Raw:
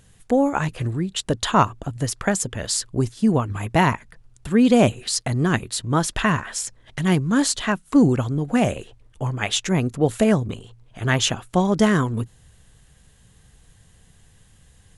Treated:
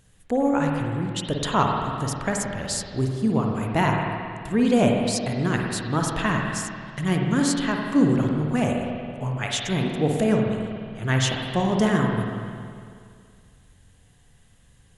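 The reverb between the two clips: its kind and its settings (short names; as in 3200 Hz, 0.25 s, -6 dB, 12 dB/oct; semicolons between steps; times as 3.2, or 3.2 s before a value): spring tank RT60 2.2 s, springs 46/53 ms, chirp 40 ms, DRR 0.5 dB; gain -5 dB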